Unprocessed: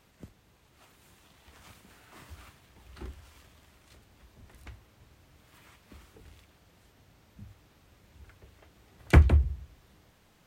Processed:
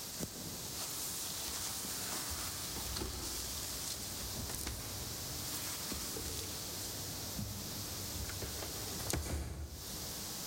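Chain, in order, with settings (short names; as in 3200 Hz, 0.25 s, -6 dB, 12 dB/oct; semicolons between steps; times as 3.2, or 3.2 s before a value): HPF 100 Hz 6 dB/oct; resonant high shelf 3600 Hz +11.5 dB, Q 1.5; compressor 10:1, threshold -53 dBFS, peak gain reduction 36 dB; plate-style reverb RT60 1.7 s, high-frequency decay 0.7×, pre-delay 0.115 s, DRR 3.5 dB; gain +15 dB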